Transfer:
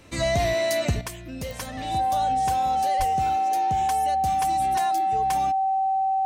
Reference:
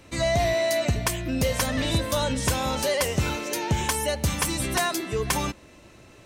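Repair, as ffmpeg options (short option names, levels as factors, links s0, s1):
-filter_complex "[0:a]adeclick=t=4,bandreject=f=770:w=30,asplit=3[s0][s1][s2];[s0]afade=t=out:st=2.98:d=0.02[s3];[s1]highpass=f=140:w=0.5412,highpass=f=140:w=1.3066,afade=t=in:st=2.98:d=0.02,afade=t=out:st=3.1:d=0.02[s4];[s2]afade=t=in:st=3.1:d=0.02[s5];[s3][s4][s5]amix=inputs=3:normalize=0,asetnsamples=n=441:p=0,asendcmd='1.01 volume volume 9dB',volume=1"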